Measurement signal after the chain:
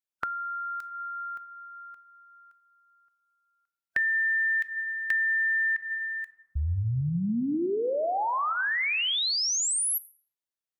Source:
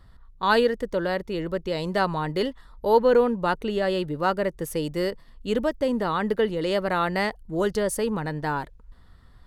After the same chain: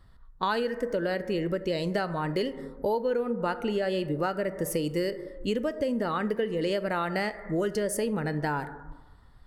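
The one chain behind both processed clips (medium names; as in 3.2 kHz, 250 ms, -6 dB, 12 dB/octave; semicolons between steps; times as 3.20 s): plate-style reverb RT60 1.4 s, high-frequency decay 0.3×, DRR 12 dB; compression 6:1, threshold -29 dBFS; spectral noise reduction 8 dB; trim +4 dB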